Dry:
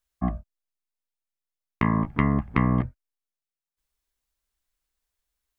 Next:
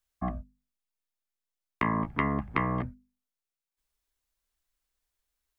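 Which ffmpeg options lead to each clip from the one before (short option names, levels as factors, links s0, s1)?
-filter_complex "[0:a]acrossover=split=320|760[s0][s1][s2];[s0]alimiter=limit=0.0668:level=0:latency=1:release=106[s3];[s3][s1][s2]amix=inputs=3:normalize=0,bandreject=f=50:t=h:w=6,bandreject=f=100:t=h:w=6,bandreject=f=150:t=h:w=6,bandreject=f=200:t=h:w=6,bandreject=f=250:t=h:w=6,volume=0.891"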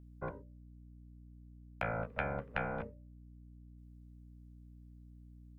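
-af "highpass=98,aeval=exprs='val(0)*sin(2*PI*340*n/s)':c=same,aeval=exprs='val(0)+0.00398*(sin(2*PI*60*n/s)+sin(2*PI*2*60*n/s)/2+sin(2*PI*3*60*n/s)/3+sin(2*PI*4*60*n/s)/4+sin(2*PI*5*60*n/s)/5)':c=same,volume=0.531"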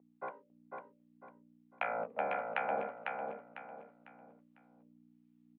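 -filter_complex "[0:a]acrossover=split=910[s0][s1];[s0]aeval=exprs='val(0)*(1-0.7/2+0.7/2*cos(2*PI*1.4*n/s))':c=same[s2];[s1]aeval=exprs='val(0)*(1-0.7/2-0.7/2*cos(2*PI*1.4*n/s))':c=same[s3];[s2][s3]amix=inputs=2:normalize=0,highpass=f=260:w=0.5412,highpass=f=260:w=1.3066,equalizer=f=320:t=q:w=4:g=-8,equalizer=f=780:t=q:w=4:g=6,equalizer=f=1600:t=q:w=4:g=-5,lowpass=f=3100:w=0.5412,lowpass=f=3100:w=1.3066,asplit=2[s4][s5];[s5]aecho=0:1:500|1000|1500|2000:0.631|0.208|0.0687|0.0227[s6];[s4][s6]amix=inputs=2:normalize=0,volume=1.68"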